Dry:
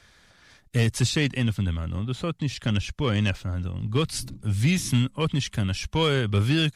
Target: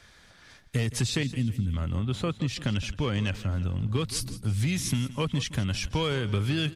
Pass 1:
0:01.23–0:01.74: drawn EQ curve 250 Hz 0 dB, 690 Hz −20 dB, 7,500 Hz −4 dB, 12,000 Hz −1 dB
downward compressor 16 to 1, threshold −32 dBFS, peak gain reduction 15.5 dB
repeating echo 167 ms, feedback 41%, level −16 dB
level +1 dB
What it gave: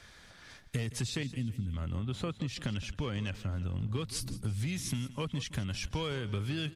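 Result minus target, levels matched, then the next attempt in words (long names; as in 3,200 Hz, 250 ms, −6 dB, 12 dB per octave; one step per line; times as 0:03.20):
downward compressor: peak gain reduction +7.5 dB
0:01.23–0:01.74: drawn EQ curve 250 Hz 0 dB, 690 Hz −20 dB, 7,500 Hz −4 dB, 12,000 Hz −1 dB
downward compressor 16 to 1, threshold −24 dBFS, peak gain reduction 8 dB
repeating echo 167 ms, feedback 41%, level −16 dB
level +1 dB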